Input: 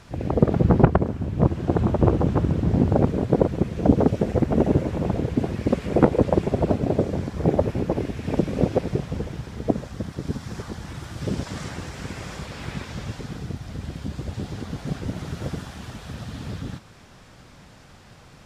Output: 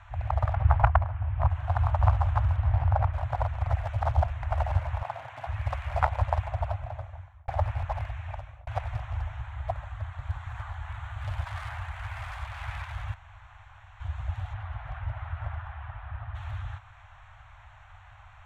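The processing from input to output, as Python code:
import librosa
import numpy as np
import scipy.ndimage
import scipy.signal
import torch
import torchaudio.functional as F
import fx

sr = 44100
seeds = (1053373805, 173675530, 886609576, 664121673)

y = fx.lowpass(x, sr, hz=3300.0, slope=24, at=(0.53, 1.5))
y = fx.lowpass(y, sr, hz=fx.line((2.56, 4200.0), (3.12, 2600.0)), slope=12, at=(2.56, 3.12), fade=0.02)
y = fx.highpass(y, sr, hz=170.0, slope=24, at=(5.02, 5.47))
y = fx.peak_eq(y, sr, hz=5600.0, db=-6.5, octaves=0.32, at=(9.42, 12.12))
y = fx.lowpass(y, sr, hz=fx.line((14.53, 3200.0), (16.34, 1800.0)), slope=12, at=(14.53, 16.34), fade=0.02)
y = fx.edit(y, sr, fx.reverse_span(start_s=3.66, length_s=0.77),
    fx.fade_out_span(start_s=6.29, length_s=1.19),
    fx.fade_out_span(start_s=8.05, length_s=0.62),
    fx.room_tone_fill(start_s=13.14, length_s=0.86), tone=tone)
y = fx.wiener(y, sr, points=9)
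y = scipy.signal.sosfilt(scipy.signal.cheby2(4, 40, [160.0, 470.0], 'bandstop', fs=sr, output='sos'), y)
y = fx.high_shelf(y, sr, hz=4700.0, db=-7.5)
y = y * 10.0 ** (2.0 / 20.0)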